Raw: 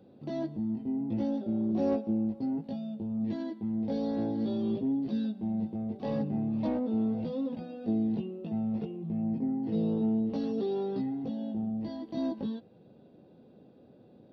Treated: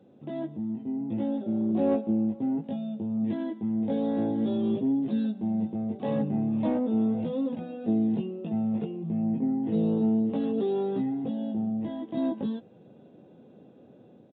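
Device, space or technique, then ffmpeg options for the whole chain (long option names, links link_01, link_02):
Bluetooth headset: -af "highpass=100,dynaudnorm=framelen=940:gausssize=3:maxgain=4dB,aresample=8000,aresample=44100" -ar 16000 -c:a sbc -b:a 64k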